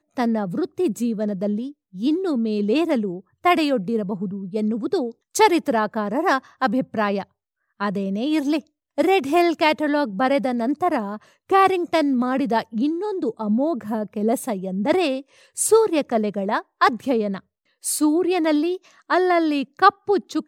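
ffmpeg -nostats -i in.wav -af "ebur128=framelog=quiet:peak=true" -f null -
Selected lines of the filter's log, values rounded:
Integrated loudness:
  I:         -21.6 LUFS
  Threshold: -31.8 LUFS
Loudness range:
  LRA:         2.5 LU
  Threshold: -41.9 LUFS
  LRA low:   -23.2 LUFS
  LRA high:  -20.8 LUFS
True peak:
  Peak:       -1.4 dBFS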